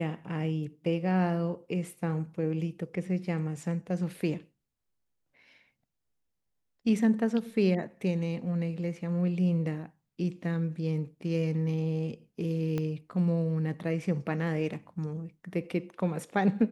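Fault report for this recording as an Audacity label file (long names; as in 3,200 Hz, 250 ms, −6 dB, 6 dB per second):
12.780000	12.780000	click −20 dBFS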